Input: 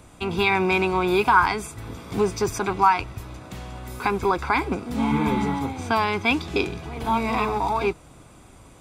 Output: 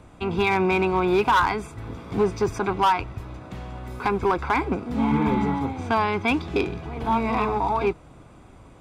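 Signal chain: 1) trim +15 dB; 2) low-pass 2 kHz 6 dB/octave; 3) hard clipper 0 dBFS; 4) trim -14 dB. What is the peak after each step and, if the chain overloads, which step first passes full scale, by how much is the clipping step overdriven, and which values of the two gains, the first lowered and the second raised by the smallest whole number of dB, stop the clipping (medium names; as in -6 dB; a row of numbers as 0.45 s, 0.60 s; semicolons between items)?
+11.0 dBFS, +9.5 dBFS, 0.0 dBFS, -14.0 dBFS; step 1, 9.5 dB; step 1 +5 dB, step 4 -4 dB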